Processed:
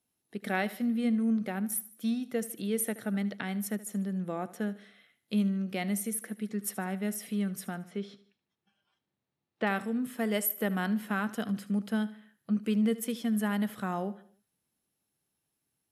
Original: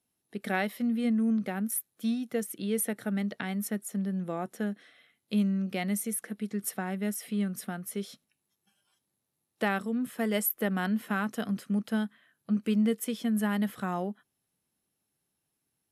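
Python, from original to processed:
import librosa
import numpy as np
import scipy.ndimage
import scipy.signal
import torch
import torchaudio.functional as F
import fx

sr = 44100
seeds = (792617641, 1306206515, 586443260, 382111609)

p1 = fx.lowpass(x, sr, hz=3300.0, slope=12, at=(7.74, 9.67))
p2 = p1 + fx.echo_feedback(p1, sr, ms=75, feedback_pct=44, wet_db=-17.0, dry=0)
y = p2 * librosa.db_to_amplitude(-1.0)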